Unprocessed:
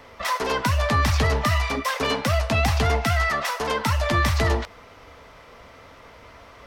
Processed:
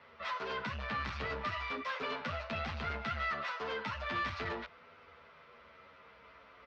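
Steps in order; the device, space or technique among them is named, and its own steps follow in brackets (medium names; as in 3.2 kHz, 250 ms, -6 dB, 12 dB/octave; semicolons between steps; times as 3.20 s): barber-pole flanger into a guitar amplifier (endless flanger 10 ms -0.38 Hz; saturation -23 dBFS, distortion -12 dB; cabinet simulation 95–4300 Hz, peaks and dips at 110 Hz -9 dB, 300 Hz -7 dB, 760 Hz -4 dB, 1.4 kHz +6 dB, 2.5 kHz +3 dB); trim -8.5 dB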